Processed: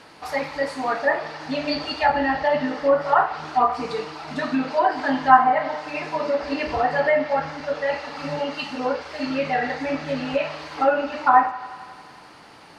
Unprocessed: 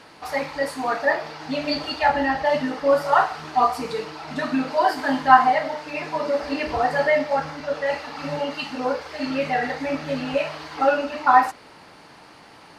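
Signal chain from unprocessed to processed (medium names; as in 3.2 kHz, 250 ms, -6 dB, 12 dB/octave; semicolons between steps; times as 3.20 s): low-pass that closes with the level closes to 1.9 kHz, closed at -13.5 dBFS; thinning echo 89 ms, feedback 81%, high-pass 420 Hz, level -17 dB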